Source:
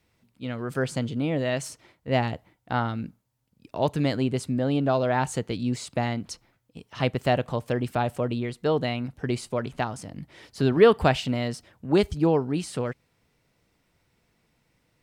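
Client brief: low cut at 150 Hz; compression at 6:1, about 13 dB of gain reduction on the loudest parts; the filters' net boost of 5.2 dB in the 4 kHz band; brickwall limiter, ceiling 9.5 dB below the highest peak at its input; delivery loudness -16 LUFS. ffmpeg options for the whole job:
-af "highpass=150,equalizer=f=4000:t=o:g=7,acompressor=threshold=0.0562:ratio=6,volume=7.5,alimiter=limit=0.75:level=0:latency=1"

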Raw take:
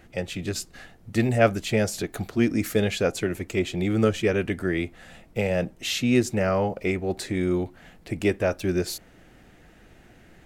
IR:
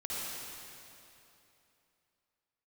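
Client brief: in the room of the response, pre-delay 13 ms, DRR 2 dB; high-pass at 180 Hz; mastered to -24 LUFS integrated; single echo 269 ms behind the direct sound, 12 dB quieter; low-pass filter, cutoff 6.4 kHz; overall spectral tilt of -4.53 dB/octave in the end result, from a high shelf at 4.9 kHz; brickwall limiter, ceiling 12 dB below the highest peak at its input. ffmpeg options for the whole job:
-filter_complex "[0:a]highpass=180,lowpass=6400,highshelf=f=4900:g=-7.5,alimiter=limit=0.119:level=0:latency=1,aecho=1:1:269:0.251,asplit=2[s0][s1];[1:a]atrim=start_sample=2205,adelay=13[s2];[s1][s2]afir=irnorm=-1:irlink=0,volume=0.501[s3];[s0][s3]amix=inputs=2:normalize=0,volume=1.58"

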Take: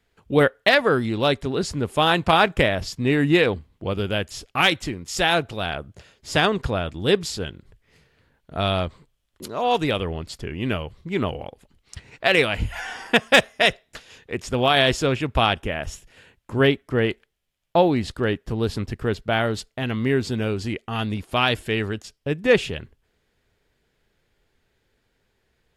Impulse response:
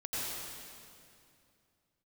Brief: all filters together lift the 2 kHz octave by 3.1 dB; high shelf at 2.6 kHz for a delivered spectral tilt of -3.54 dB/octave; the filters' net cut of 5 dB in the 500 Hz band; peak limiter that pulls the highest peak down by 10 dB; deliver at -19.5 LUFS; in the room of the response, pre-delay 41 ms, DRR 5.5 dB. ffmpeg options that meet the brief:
-filter_complex "[0:a]equalizer=f=500:t=o:g=-6.5,equalizer=f=2000:t=o:g=6,highshelf=f=2600:g=-4,alimiter=limit=0.316:level=0:latency=1,asplit=2[s0][s1];[1:a]atrim=start_sample=2205,adelay=41[s2];[s1][s2]afir=irnorm=-1:irlink=0,volume=0.316[s3];[s0][s3]amix=inputs=2:normalize=0,volume=1.78"

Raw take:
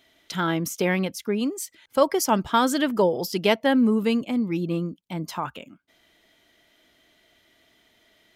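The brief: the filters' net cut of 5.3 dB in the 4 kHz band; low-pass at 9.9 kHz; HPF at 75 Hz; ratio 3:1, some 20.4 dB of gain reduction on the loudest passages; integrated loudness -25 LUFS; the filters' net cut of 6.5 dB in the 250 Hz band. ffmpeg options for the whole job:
-af "highpass=75,lowpass=9900,equalizer=f=250:t=o:g=-8,equalizer=f=4000:t=o:g=-7.5,acompressor=threshold=0.00631:ratio=3,volume=7.94"

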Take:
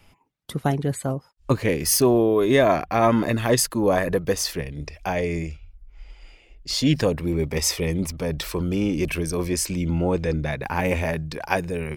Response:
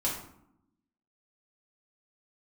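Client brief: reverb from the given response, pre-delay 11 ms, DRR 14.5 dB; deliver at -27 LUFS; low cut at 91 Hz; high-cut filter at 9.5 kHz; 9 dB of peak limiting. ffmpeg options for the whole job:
-filter_complex "[0:a]highpass=91,lowpass=9500,alimiter=limit=0.237:level=0:latency=1,asplit=2[s0][s1];[1:a]atrim=start_sample=2205,adelay=11[s2];[s1][s2]afir=irnorm=-1:irlink=0,volume=0.0891[s3];[s0][s3]amix=inputs=2:normalize=0,volume=0.794"

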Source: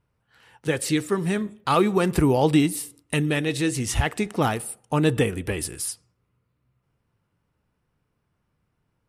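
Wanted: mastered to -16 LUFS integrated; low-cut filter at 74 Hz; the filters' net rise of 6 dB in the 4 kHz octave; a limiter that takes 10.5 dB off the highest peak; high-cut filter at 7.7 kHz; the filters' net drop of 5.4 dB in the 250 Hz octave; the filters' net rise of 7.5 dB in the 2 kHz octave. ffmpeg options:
-af "highpass=74,lowpass=7700,equalizer=f=250:t=o:g=-8,equalizer=f=2000:t=o:g=8,equalizer=f=4000:t=o:g=5,volume=3.76,alimiter=limit=0.631:level=0:latency=1"

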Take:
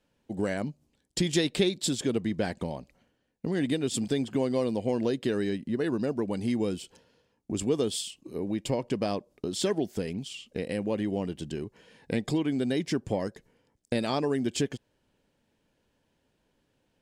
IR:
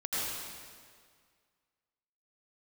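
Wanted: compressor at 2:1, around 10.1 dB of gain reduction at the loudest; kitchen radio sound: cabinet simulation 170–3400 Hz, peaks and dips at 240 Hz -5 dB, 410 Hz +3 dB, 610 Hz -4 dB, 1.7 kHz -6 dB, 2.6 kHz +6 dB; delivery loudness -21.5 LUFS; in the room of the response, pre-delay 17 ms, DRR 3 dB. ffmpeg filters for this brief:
-filter_complex "[0:a]acompressor=threshold=0.00891:ratio=2,asplit=2[s0][s1];[1:a]atrim=start_sample=2205,adelay=17[s2];[s1][s2]afir=irnorm=-1:irlink=0,volume=0.316[s3];[s0][s3]amix=inputs=2:normalize=0,highpass=170,equalizer=f=240:t=q:w=4:g=-5,equalizer=f=410:t=q:w=4:g=3,equalizer=f=610:t=q:w=4:g=-4,equalizer=f=1700:t=q:w=4:g=-6,equalizer=f=2600:t=q:w=4:g=6,lowpass=f=3400:w=0.5412,lowpass=f=3400:w=1.3066,volume=7.5"

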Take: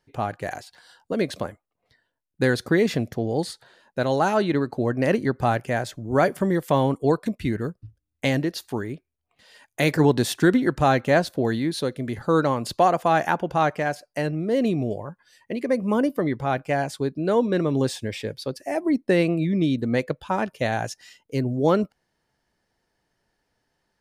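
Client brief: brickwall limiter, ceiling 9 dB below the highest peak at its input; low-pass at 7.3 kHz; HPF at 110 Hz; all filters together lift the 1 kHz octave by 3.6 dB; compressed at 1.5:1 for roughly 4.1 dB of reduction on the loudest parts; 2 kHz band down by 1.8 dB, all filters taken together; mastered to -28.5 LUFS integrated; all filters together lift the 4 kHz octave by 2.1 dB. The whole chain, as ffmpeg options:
-af "highpass=110,lowpass=7300,equalizer=f=1000:t=o:g=6,equalizer=f=2000:t=o:g=-5.5,equalizer=f=4000:t=o:g=4,acompressor=threshold=0.0708:ratio=1.5,alimiter=limit=0.15:level=0:latency=1"

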